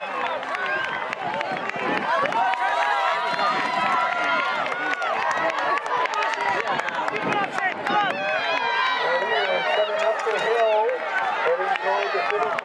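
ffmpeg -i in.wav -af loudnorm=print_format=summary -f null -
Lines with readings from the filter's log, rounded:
Input Integrated:    -22.7 LUFS
Input True Peak:      -7.6 dBTP
Input LRA:             1.3 LU
Input Threshold:     -32.7 LUFS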